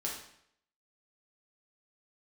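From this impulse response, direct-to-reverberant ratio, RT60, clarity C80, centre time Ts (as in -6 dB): -4.0 dB, 0.70 s, 7.5 dB, 38 ms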